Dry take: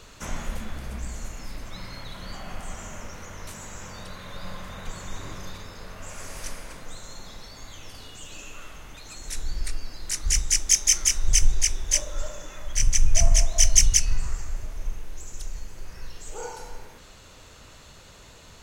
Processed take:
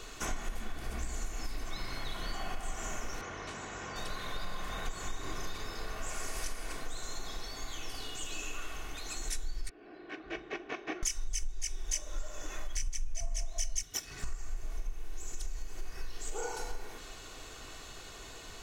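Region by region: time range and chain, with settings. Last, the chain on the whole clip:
3.21–3.96 HPF 70 Hz + air absorption 120 m
9.69–11.03 CVSD 64 kbps + speaker cabinet 290–2100 Hz, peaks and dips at 350 Hz +6 dB, 520 Hz -3 dB, 940 Hz -9 dB, 1300 Hz -9 dB, 2000 Hz -9 dB + notch 860 Hz, Q 18
13.82–14.24 minimum comb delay 0.54 ms + HPF 150 Hz + high shelf 10000 Hz -10 dB
whole clip: bell 77 Hz -9.5 dB 1 oct; comb 2.7 ms, depth 49%; compressor 6:1, threshold -32 dBFS; gain +1 dB

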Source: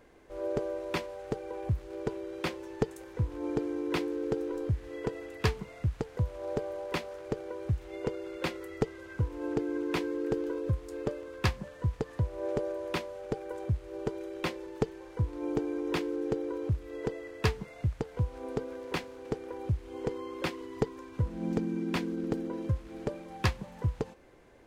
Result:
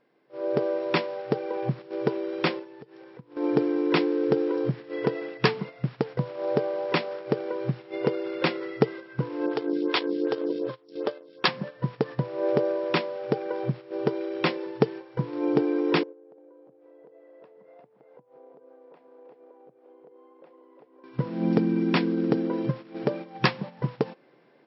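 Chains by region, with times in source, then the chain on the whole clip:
2.58–3.36 median filter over 5 samples + compressor 20:1, threshold -41 dBFS
9.46–11.48 band shelf 4200 Hz +8.5 dB 1.1 oct + transient shaper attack +1 dB, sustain -10 dB + photocell phaser 2.6 Hz
16.03–21.04 compressor 12:1, threshold -42 dBFS + band-pass 600 Hz, Q 1.9 + echo 0.351 s -5.5 dB
whole clip: FFT band-pass 120–5600 Hz; gate -43 dBFS, range -9 dB; AGC gain up to 8.5 dB

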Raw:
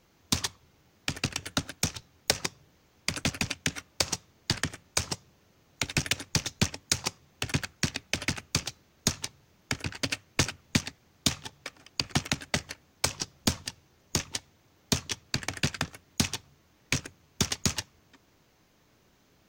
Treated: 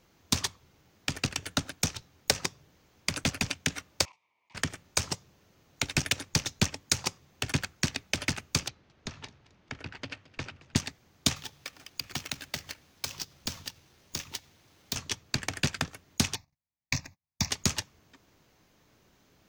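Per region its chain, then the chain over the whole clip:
4.05–4.55 double band-pass 1500 Hz, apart 1.2 oct + auto swell 0.137 s
8.68–10.76 LPF 3500 Hz + compressor 2:1, threshold -40 dBFS + warbling echo 0.219 s, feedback 36%, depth 88 cents, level -20.5 dB
11.36–14.96 median filter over 5 samples + high shelf 2700 Hz +11 dB + compressor 2:1, threshold -38 dBFS
16.35–17.5 gate -57 dBFS, range -34 dB + fixed phaser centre 2100 Hz, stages 8
whole clip: dry

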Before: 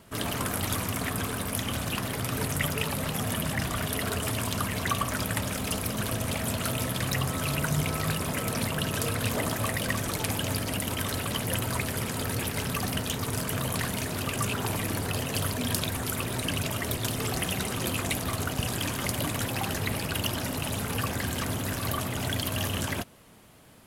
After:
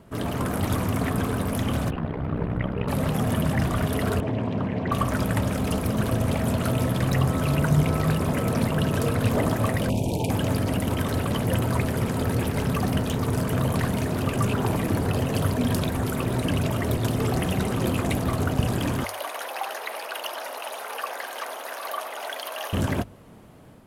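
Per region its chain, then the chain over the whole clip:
1.9–2.88 ring modulator 32 Hz + air absorption 460 m
4.2–4.92 BPF 120–2100 Hz + bell 1300 Hz -10.5 dB 0.62 oct + Doppler distortion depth 0.17 ms
9.89–10.3 brick-wall FIR band-stop 980–2300 Hz + Doppler distortion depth 0.12 ms
19.04–22.73 HPF 600 Hz 24 dB/oct + notch 7600 Hz, Q 5.2
whole clip: tilt shelf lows +7 dB, about 1500 Hz; notches 50/100 Hz; AGC gain up to 3 dB; gain -1.5 dB

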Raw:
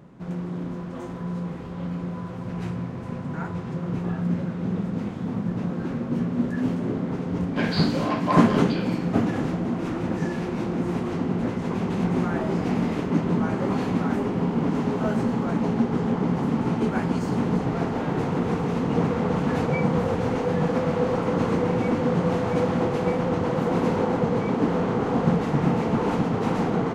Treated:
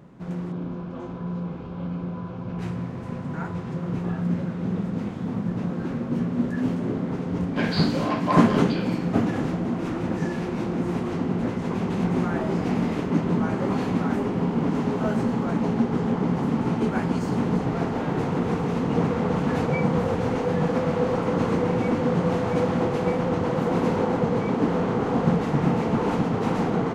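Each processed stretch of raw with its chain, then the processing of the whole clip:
0.52–2.59 air absorption 140 m + notch 1900 Hz, Q 5.1
whole clip: dry

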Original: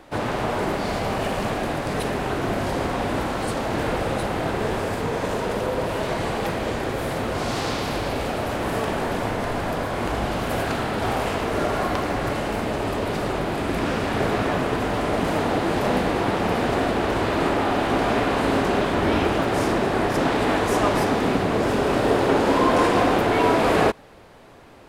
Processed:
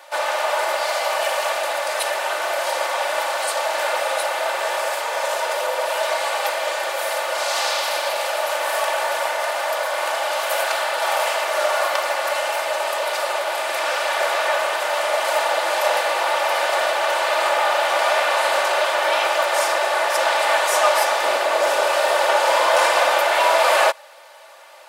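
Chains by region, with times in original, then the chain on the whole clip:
21.23–21.87 brick-wall FIR high-pass 190 Hz + low shelf 350 Hz +10 dB
whole clip: steep high-pass 550 Hz 36 dB/oct; high shelf 4200 Hz +6 dB; comb 3.4 ms, depth 65%; gain +4 dB

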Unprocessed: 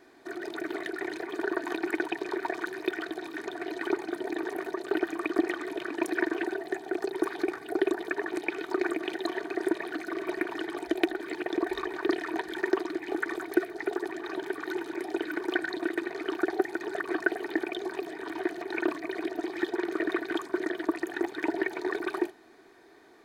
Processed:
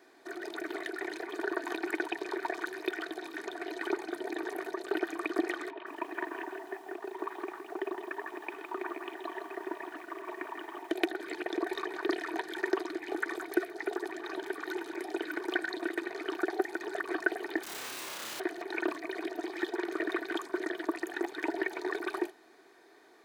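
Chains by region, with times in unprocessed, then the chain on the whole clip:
5.7–10.91 CVSD 64 kbps + speaker cabinet 260–2600 Hz, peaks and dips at 330 Hz -6 dB, 490 Hz -10 dB, 740 Hz -4 dB, 1000 Hz +6 dB, 1500 Hz -8 dB, 2200 Hz -7 dB + lo-fi delay 0.163 s, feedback 35%, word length 9-bit, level -7.5 dB
17.63–18.4 speaker cabinet 230–2600 Hz, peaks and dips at 460 Hz -3 dB, 820 Hz -6 dB, 1300 Hz +3 dB + wrapped overs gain 37.5 dB + flutter echo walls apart 5.3 m, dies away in 0.8 s
whole clip: HPF 88 Hz; tone controls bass -10 dB, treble +2 dB; gain -2 dB

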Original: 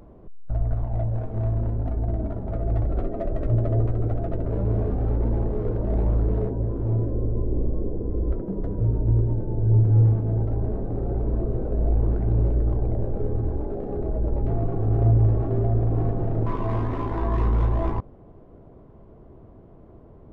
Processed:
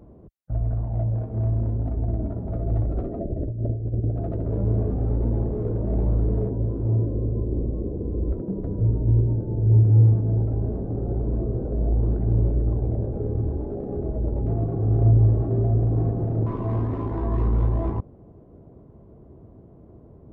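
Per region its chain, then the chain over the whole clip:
3.19–4.16 running mean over 38 samples + negative-ratio compressor -24 dBFS, ratio -0.5
whole clip: HPF 55 Hz; tilt shelf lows +6 dB, about 780 Hz; gain -3.5 dB

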